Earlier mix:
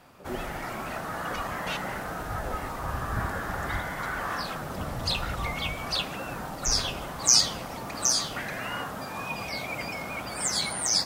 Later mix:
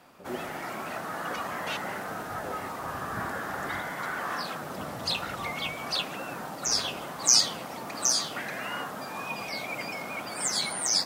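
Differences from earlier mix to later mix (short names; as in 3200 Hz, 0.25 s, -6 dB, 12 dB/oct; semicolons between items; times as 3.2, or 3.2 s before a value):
background: add HPF 170 Hz 12 dB/oct; reverb: off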